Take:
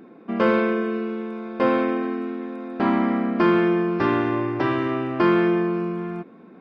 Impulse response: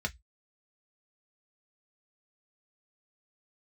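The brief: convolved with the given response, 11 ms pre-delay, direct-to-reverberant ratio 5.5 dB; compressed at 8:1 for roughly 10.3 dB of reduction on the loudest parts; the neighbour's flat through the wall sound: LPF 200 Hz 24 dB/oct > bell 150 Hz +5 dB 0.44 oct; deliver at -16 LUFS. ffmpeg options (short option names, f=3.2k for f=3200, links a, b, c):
-filter_complex "[0:a]acompressor=threshold=-25dB:ratio=8,asplit=2[a][b];[1:a]atrim=start_sample=2205,adelay=11[c];[b][c]afir=irnorm=-1:irlink=0,volume=-10dB[d];[a][d]amix=inputs=2:normalize=0,lowpass=f=200:w=0.5412,lowpass=f=200:w=1.3066,equalizer=f=150:t=o:w=0.44:g=5,volume=19dB"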